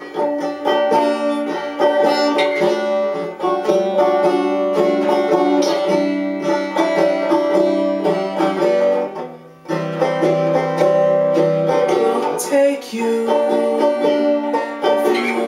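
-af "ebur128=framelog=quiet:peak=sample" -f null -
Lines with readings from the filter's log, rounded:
Integrated loudness:
  I:         -16.9 LUFS
  Threshold: -27.0 LUFS
Loudness range:
  LRA:         1.4 LU
  Threshold: -36.9 LUFS
  LRA low:   -17.7 LUFS
  LRA high:  -16.3 LUFS
Sample peak:
  Peak:       -2.4 dBFS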